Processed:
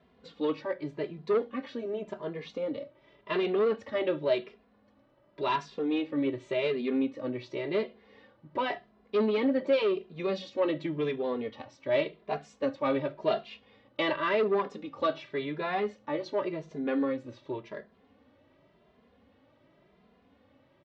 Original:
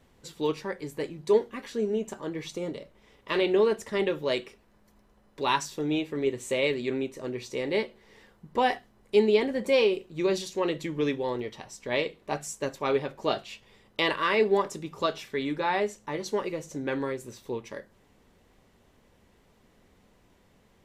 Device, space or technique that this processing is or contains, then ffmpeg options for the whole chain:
barber-pole flanger into a guitar amplifier: -filter_complex "[0:a]asplit=2[link_01][link_02];[link_02]adelay=2.5,afreqshift=0.9[link_03];[link_01][link_03]amix=inputs=2:normalize=1,asoftclip=type=tanh:threshold=-23dB,highpass=78,equalizer=frequency=270:width_type=q:width=4:gain=7,equalizer=frequency=600:width_type=q:width=4:gain=8,equalizer=frequency=1200:width_type=q:width=4:gain=3,lowpass=frequency=4100:width=0.5412,lowpass=frequency=4100:width=1.3066"

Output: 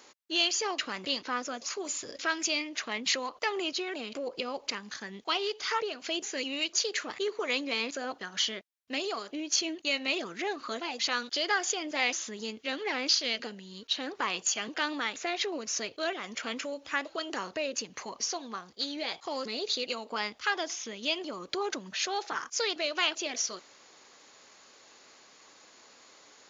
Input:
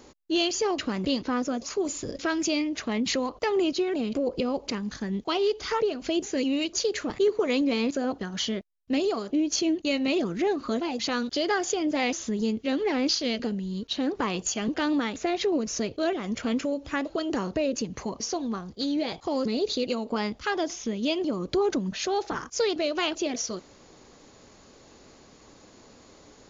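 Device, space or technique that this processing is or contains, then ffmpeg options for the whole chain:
filter by subtraction: -filter_complex "[0:a]asplit=2[link_01][link_02];[link_02]lowpass=1800,volume=-1[link_03];[link_01][link_03]amix=inputs=2:normalize=0"

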